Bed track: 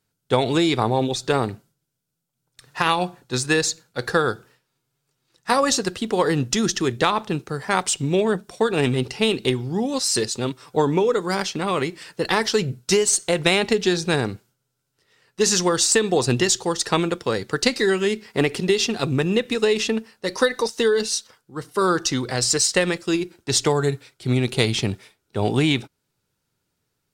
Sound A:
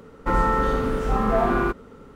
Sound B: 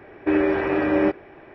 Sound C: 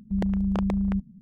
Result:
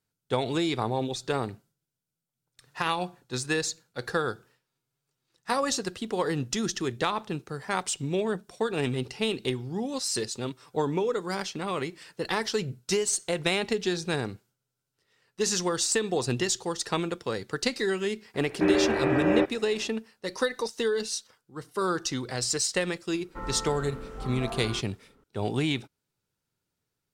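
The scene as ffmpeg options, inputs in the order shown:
ffmpeg -i bed.wav -i cue0.wav -i cue1.wav -filter_complex "[0:a]volume=-8dB[link_01];[2:a]atrim=end=1.54,asetpts=PTS-STARTPTS,volume=-3.5dB,afade=type=in:duration=0.004:curve=hsin,afade=type=out:start_time=1.536:duration=0.004:curve=hsin,adelay=18340[link_02];[1:a]atrim=end=2.15,asetpts=PTS-STARTPTS,volume=-16dB,afade=type=in:duration=0.004:curve=hsin,afade=type=out:start_time=2.146:duration=0.004:curve=hsin,adelay=23090[link_03];[link_01][link_02][link_03]amix=inputs=3:normalize=0" out.wav

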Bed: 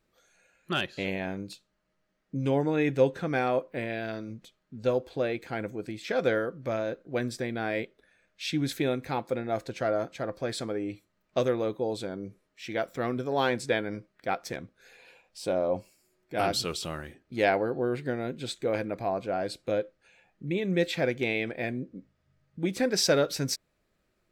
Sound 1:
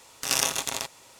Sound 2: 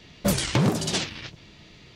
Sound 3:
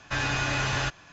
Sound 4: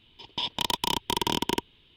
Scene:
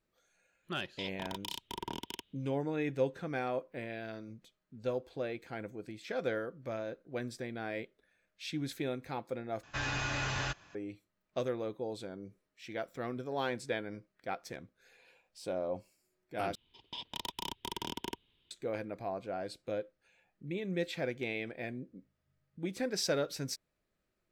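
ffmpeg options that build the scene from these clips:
ffmpeg -i bed.wav -i cue0.wav -i cue1.wav -i cue2.wav -i cue3.wav -filter_complex "[4:a]asplit=2[link_01][link_02];[0:a]volume=-8.5dB[link_03];[link_01]acrossover=split=1900[link_04][link_05];[link_04]aeval=exprs='val(0)*(1-0.7/2+0.7/2*cos(2*PI*1.6*n/s))':channel_layout=same[link_06];[link_05]aeval=exprs='val(0)*(1-0.7/2-0.7/2*cos(2*PI*1.6*n/s))':channel_layout=same[link_07];[link_06][link_07]amix=inputs=2:normalize=0[link_08];[link_03]asplit=3[link_09][link_10][link_11];[link_09]atrim=end=9.634[link_12];[3:a]atrim=end=1.12,asetpts=PTS-STARTPTS,volume=-7.5dB[link_13];[link_10]atrim=start=10.746:end=16.554[link_14];[link_02]atrim=end=1.96,asetpts=PTS-STARTPTS,volume=-13dB[link_15];[link_11]atrim=start=18.506[link_16];[link_08]atrim=end=1.96,asetpts=PTS-STARTPTS,volume=-11.5dB,afade=type=in:duration=0.1,afade=type=out:start_time=1.86:duration=0.1,adelay=610[link_17];[link_12][link_13]acrossfade=duration=0.004:curve1=hsin:curve2=hsin[link_18];[link_18][link_14]acrossfade=duration=0.004:curve1=hsin:curve2=hsin[link_19];[link_19][link_15]acrossfade=duration=0.004:curve1=hsin:curve2=hsin[link_20];[link_20][link_16]acrossfade=duration=0.004:curve1=hsin:curve2=hsin[link_21];[link_21][link_17]amix=inputs=2:normalize=0" out.wav

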